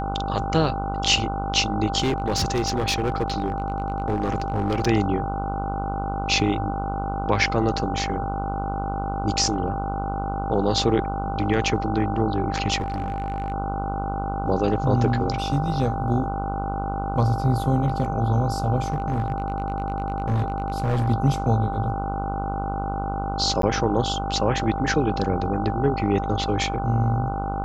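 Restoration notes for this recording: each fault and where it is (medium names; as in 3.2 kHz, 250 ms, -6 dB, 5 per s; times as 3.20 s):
buzz 50 Hz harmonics 30 -29 dBFS
whine 790 Hz -28 dBFS
1.99–4.87 s: clipped -18 dBFS
12.80–13.52 s: clipped -22.5 dBFS
18.90–21.08 s: clipped -18.5 dBFS
23.62–23.63 s: dropout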